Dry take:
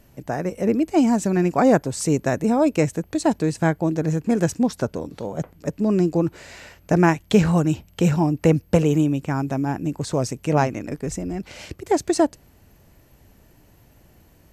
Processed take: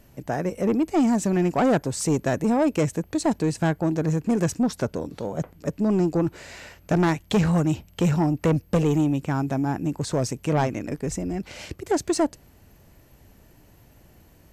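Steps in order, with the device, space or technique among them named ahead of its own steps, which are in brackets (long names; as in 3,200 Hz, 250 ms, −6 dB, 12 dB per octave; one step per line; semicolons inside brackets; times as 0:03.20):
saturation between pre-emphasis and de-emphasis (high-shelf EQ 8,000 Hz +9.5 dB; soft clipping −14.5 dBFS, distortion −13 dB; high-shelf EQ 8,000 Hz −9.5 dB)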